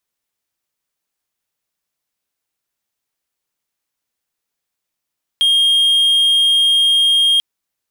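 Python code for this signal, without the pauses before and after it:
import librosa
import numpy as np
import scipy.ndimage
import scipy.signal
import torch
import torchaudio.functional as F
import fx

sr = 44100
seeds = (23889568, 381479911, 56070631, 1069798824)

y = 10.0 ** (-8.0 / 20.0) * (1.0 - 4.0 * np.abs(np.mod(3230.0 * (np.arange(round(1.99 * sr)) / sr) + 0.25, 1.0) - 0.5))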